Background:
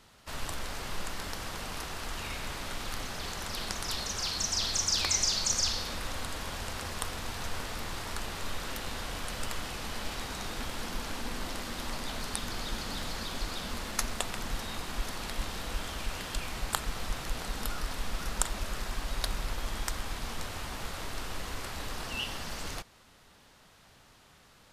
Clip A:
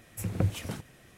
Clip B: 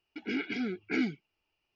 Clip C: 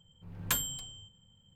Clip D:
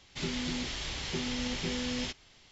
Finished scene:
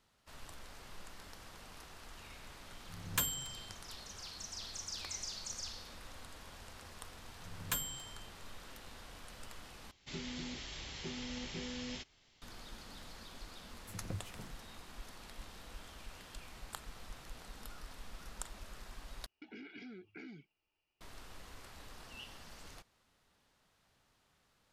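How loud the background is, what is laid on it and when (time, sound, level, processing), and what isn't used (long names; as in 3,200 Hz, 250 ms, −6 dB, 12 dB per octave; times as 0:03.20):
background −15 dB
0:02.67: mix in C −3 dB
0:07.21: mix in C −6 dB
0:09.91: overwrite with D −9 dB
0:13.70: mix in A −15 dB
0:19.26: overwrite with B −5 dB + downward compressor 8 to 1, threshold −42 dBFS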